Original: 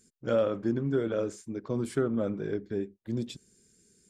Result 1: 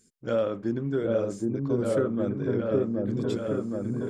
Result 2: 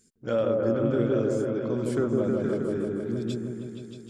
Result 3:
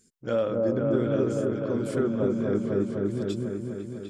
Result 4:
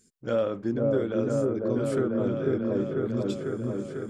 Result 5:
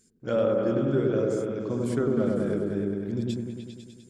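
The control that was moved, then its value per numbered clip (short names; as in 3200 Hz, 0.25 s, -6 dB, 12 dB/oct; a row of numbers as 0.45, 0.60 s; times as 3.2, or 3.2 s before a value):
repeats that get brighter, time: 0.77, 0.157, 0.25, 0.496, 0.1 s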